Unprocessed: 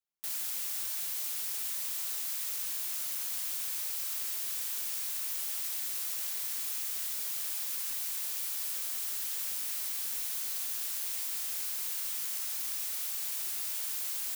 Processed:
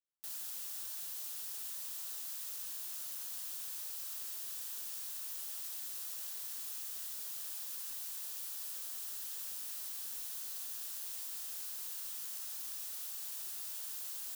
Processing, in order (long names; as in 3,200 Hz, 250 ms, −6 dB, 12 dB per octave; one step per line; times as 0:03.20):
parametric band 2,200 Hz −6.5 dB 0.42 octaves
level −7.5 dB